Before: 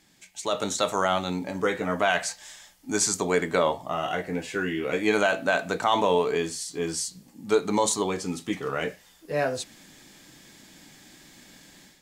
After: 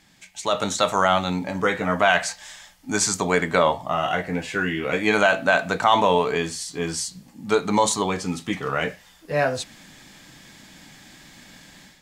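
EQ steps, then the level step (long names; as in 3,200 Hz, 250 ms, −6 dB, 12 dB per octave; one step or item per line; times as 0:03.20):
parametric band 370 Hz −7 dB 1.1 octaves
high-shelf EQ 5,000 Hz −7.5 dB
+7.0 dB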